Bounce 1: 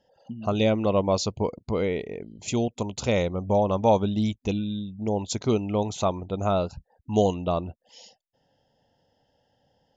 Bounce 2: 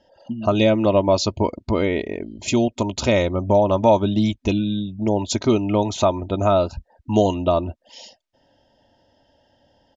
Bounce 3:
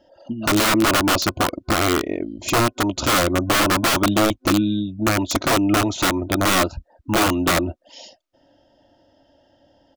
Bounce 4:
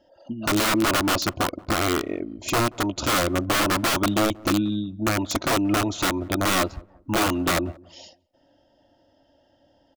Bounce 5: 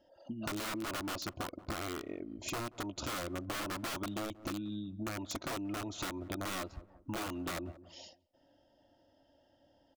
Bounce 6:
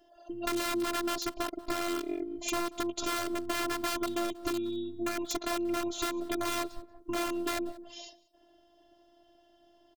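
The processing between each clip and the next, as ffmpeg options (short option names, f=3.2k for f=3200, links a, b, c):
-af "lowpass=6.1k,aecho=1:1:3.2:0.54,acompressor=threshold=-26dB:ratio=1.5,volume=8dB"
-af "aeval=exprs='0.668*(cos(1*acos(clip(val(0)/0.668,-1,1)))-cos(1*PI/2))+0.0668*(cos(2*acos(clip(val(0)/0.668,-1,1)))-cos(2*PI/2))+0.0106*(cos(8*acos(clip(val(0)/0.668,-1,1)))-cos(8*PI/2))':c=same,aeval=exprs='(mod(5.01*val(0)+1,2)-1)/5.01':c=same,superequalizer=6b=2.24:8b=1.58:10b=1.78"
-filter_complex "[0:a]asplit=2[a][b];[b]adelay=181,lowpass=f=800:p=1,volume=-22dB,asplit=2[c][d];[d]adelay=181,lowpass=f=800:p=1,volume=0.36,asplit=2[e][f];[f]adelay=181,lowpass=f=800:p=1,volume=0.36[g];[a][c][e][g]amix=inputs=4:normalize=0,volume=-4dB"
-af "acompressor=threshold=-30dB:ratio=6,volume=-7dB"
-af "afftfilt=real='hypot(re,im)*cos(PI*b)':imag='0':win_size=512:overlap=0.75,aecho=1:1:186:0.0631,volume=9dB"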